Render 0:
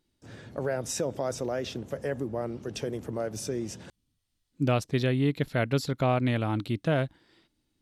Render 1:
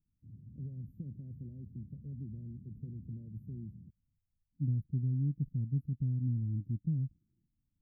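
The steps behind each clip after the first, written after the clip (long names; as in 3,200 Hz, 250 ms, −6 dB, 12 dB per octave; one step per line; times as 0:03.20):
inverse Chebyshev band-stop filter 810–8,700 Hz, stop band 70 dB
level −2.5 dB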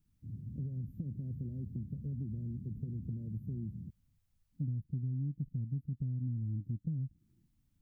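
downward compressor 4 to 1, threshold −44 dBFS, peak gain reduction 13.5 dB
level +8 dB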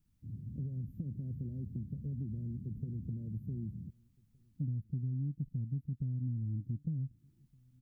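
slap from a distant wall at 260 metres, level −28 dB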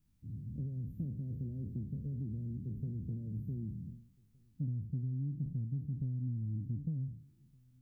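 peak hold with a decay on every bin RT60 0.57 s
level −1 dB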